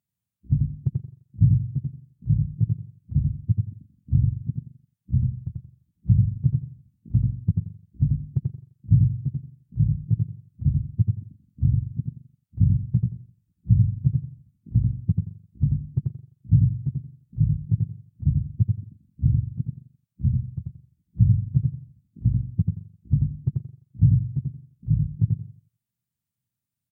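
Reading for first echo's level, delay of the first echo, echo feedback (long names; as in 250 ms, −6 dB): −3.0 dB, 88 ms, repeats not evenly spaced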